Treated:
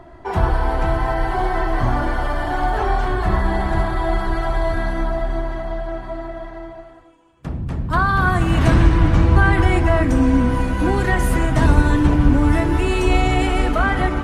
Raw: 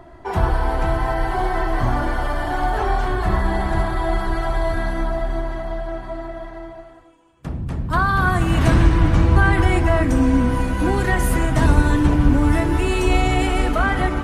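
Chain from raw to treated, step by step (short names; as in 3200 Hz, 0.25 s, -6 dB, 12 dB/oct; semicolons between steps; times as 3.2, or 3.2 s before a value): high shelf 8400 Hz -6.5 dB; gain +1 dB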